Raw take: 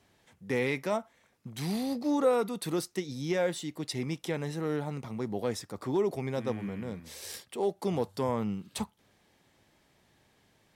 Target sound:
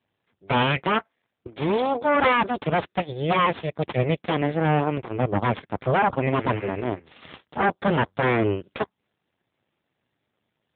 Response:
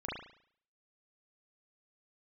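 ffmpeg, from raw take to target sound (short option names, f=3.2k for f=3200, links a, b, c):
-af "aeval=exprs='0.158*(cos(1*acos(clip(val(0)/0.158,-1,1)))-cos(1*PI/2))+0.0562*(cos(3*acos(clip(val(0)/0.158,-1,1)))-cos(3*PI/2))+0.0631*(cos(4*acos(clip(val(0)/0.158,-1,1)))-cos(4*PI/2))+0.00251*(cos(7*acos(clip(val(0)/0.158,-1,1)))-cos(7*PI/2))+0.0562*(cos(8*acos(clip(val(0)/0.158,-1,1)))-cos(8*PI/2))':c=same,volume=6dB" -ar 8000 -c:a libopencore_amrnb -b:a 7950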